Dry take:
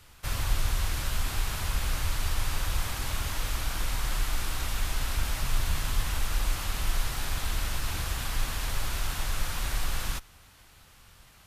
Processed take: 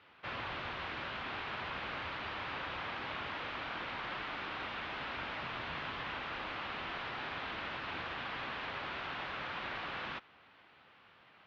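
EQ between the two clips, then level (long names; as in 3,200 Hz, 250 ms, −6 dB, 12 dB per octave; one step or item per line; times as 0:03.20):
high-pass filter 260 Hz 12 dB per octave
transistor ladder low-pass 4,200 Hz, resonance 20%
high-frequency loss of the air 220 metres
+4.5 dB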